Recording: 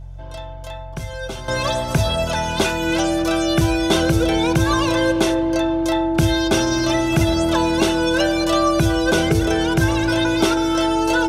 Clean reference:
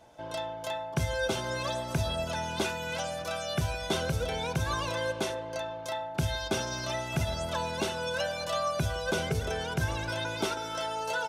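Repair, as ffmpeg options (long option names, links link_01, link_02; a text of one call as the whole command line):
ffmpeg -i in.wav -af "bandreject=frequency=45.1:width_type=h:width=4,bandreject=frequency=90.2:width_type=h:width=4,bandreject=frequency=135.3:width_type=h:width=4,bandreject=frequency=330:width=30,asetnsamples=nb_out_samples=441:pad=0,asendcmd='1.48 volume volume -11.5dB',volume=0dB" out.wav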